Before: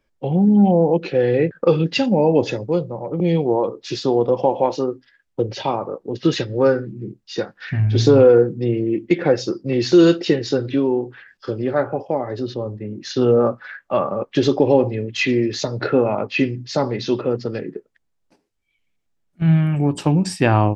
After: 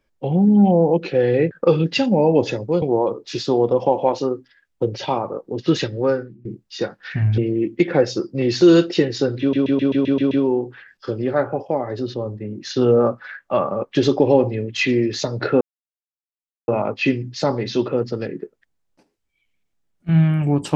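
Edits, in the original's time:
0:02.82–0:03.39: remove
0:06.45–0:07.02: fade out, to −18.5 dB
0:07.95–0:08.69: remove
0:10.71: stutter 0.13 s, 8 plays
0:16.01: splice in silence 1.07 s

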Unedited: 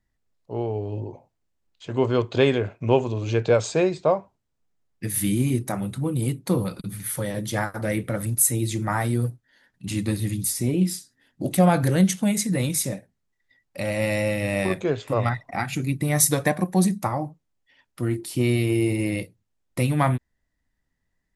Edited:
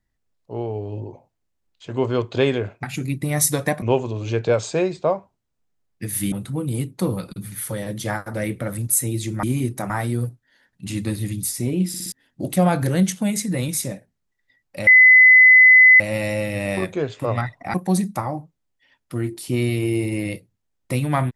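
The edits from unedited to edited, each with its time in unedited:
0:05.33–0:05.80: move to 0:08.91
0:10.89: stutter in place 0.06 s, 4 plays
0:13.88: insert tone 2,020 Hz −6.5 dBFS 1.13 s
0:15.62–0:16.61: move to 0:02.83

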